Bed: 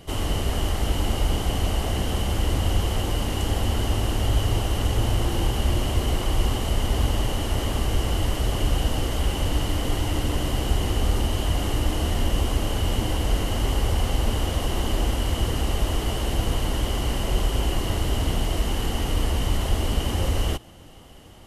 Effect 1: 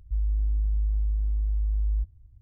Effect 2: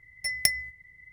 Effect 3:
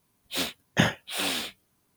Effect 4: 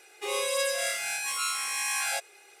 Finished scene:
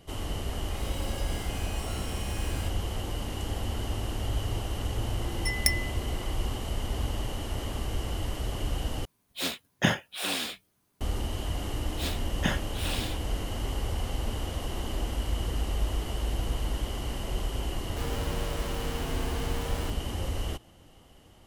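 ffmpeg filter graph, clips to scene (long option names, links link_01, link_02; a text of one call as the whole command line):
ffmpeg -i bed.wav -i cue0.wav -i cue1.wav -i cue2.wav -i cue3.wav -filter_complex "[3:a]asplit=2[link_01][link_02];[1:a]asplit=2[link_03][link_04];[0:a]volume=-8.5dB[link_05];[4:a]asoftclip=type=hard:threshold=-30.5dB[link_06];[link_04]aeval=exprs='(mod(39.8*val(0)+1,2)-1)/39.8':channel_layout=same[link_07];[link_05]asplit=2[link_08][link_09];[link_08]atrim=end=9.054[link_10];[link_01]atrim=end=1.96,asetpts=PTS-STARTPTS,volume=-2dB[link_11];[link_09]atrim=start=11.006[link_12];[link_06]atrim=end=2.6,asetpts=PTS-STARTPTS,volume=-11.5dB,afade=type=in:duration=0.004:curve=hsin,afade=type=out:start_time=2.596:duration=0.004:curve=hsin,adelay=490[link_13];[2:a]atrim=end=1.12,asetpts=PTS-STARTPTS,volume=-2dB,afade=type=in:duration=0.004:curve=hsin,afade=type=out:start_time=1.116:duration=0.004:curve=hsin,adelay=229761S[link_14];[link_02]atrim=end=1.96,asetpts=PTS-STARTPTS,volume=-6.5dB,afade=type=in:duration=0.004:curve=hsin,afade=type=out:start_time=1.956:duration=0.004:curve=hsin,adelay=11660[link_15];[link_03]atrim=end=2.41,asetpts=PTS-STARTPTS,volume=-8dB,afade=type=in:duration=0.004:curve=hsin,afade=type=out:start_time=2.406:duration=0.004:curve=hsin,adelay=14810[link_16];[link_07]atrim=end=2.41,asetpts=PTS-STARTPTS,volume=-1.5dB,afade=type=in:duration=0.004:curve=hsin,afade=type=out:start_time=2.406:duration=0.004:curve=hsin,adelay=17860[link_17];[link_10][link_11]acrossfade=duration=0.004:curve1=hsin:curve2=hsin[link_18];[link_18][link_12]acrossfade=duration=0.004:curve1=hsin:curve2=hsin[link_19];[link_19][link_13][link_14][link_15][link_16][link_17]amix=inputs=6:normalize=0" out.wav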